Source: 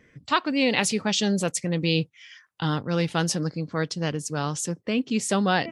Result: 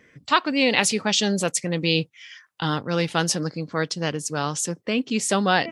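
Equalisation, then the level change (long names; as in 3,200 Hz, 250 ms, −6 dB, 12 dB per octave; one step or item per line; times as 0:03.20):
low-shelf EQ 100 Hz −8.5 dB
low-shelf EQ 430 Hz −3 dB
+4.0 dB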